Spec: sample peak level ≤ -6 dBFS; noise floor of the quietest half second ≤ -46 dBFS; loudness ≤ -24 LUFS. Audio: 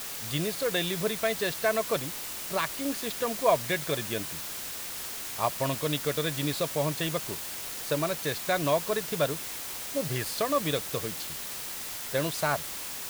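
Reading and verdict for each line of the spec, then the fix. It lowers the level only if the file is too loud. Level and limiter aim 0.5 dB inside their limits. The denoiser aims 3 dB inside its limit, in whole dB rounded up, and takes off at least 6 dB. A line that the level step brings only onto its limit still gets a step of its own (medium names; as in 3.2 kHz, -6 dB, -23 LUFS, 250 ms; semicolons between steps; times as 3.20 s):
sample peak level -9.5 dBFS: pass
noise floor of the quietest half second -37 dBFS: fail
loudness -29.5 LUFS: pass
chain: noise reduction 12 dB, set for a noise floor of -37 dBFS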